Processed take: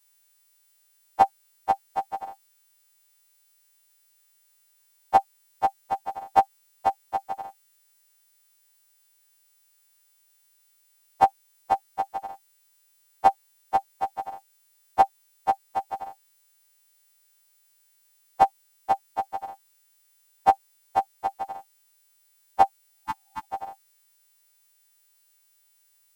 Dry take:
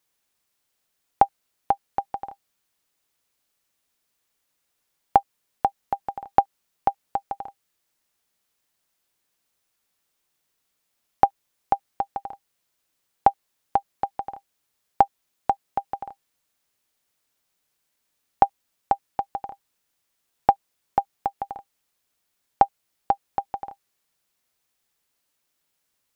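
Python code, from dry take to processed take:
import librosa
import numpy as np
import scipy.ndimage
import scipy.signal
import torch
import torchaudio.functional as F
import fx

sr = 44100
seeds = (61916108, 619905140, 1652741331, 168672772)

y = fx.freq_snap(x, sr, grid_st=2)
y = fx.spec_repair(y, sr, seeds[0], start_s=22.87, length_s=0.54, low_hz=330.0, high_hz=800.0, source='both')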